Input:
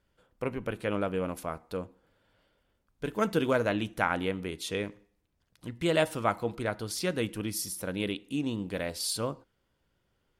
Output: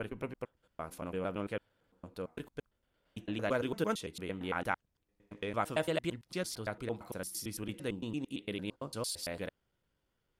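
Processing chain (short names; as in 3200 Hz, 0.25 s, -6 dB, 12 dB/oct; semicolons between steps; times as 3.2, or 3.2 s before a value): slices in reverse order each 0.113 s, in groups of 7; gain -6 dB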